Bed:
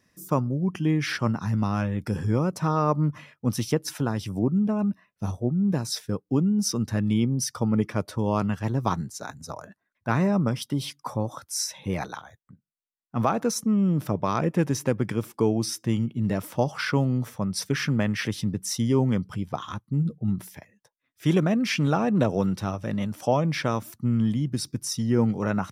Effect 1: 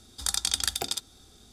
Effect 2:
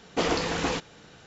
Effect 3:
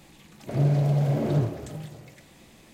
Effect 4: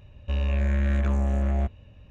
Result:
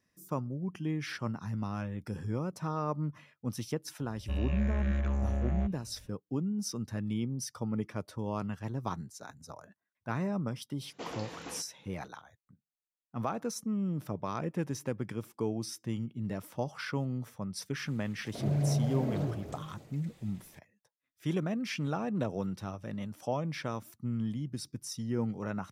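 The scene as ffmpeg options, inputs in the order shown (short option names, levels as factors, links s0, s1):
-filter_complex "[0:a]volume=0.299[s0];[4:a]aresample=16000,aresample=44100[s1];[2:a]highpass=88[s2];[3:a]aphaser=in_gain=1:out_gain=1:delay=4.7:decay=0.28:speed=1.2:type=sinusoidal[s3];[s1]atrim=end=2.1,asetpts=PTS-STARTPTS,volume=0.447,afade=t=in:d=0.004:c=hsin,afade=t=out:st=2.096:d=0.004:c=hsin,adelay=4000[s4];[s2]atrim=end=1.26,asetpts=PTS-STARTPTS,volume=0.15,afade=t=in:d=0.004:c=hsin,afade=t=out:st=1.256:d=0.004:c=hsin,adelay=477162S[s5];[s3]atrim=end=2.73,asetpts=PTS-STARTPTS,volume=0.376,afade=t=in:d=0.004:c=hsin,afade=t=out:st=2.726:d=0.004:c=hsin,adelay=17860[s6];[s0][s4][s5][s6]amix=inputs=4:normalize=0"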